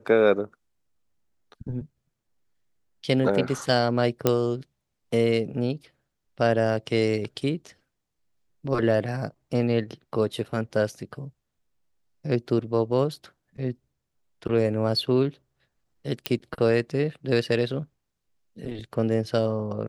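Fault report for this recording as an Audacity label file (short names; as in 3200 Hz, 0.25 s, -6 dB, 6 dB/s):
4.270000	4.270000	pop -6 dBFS
16.260000	16.260000	pop -10 dBFS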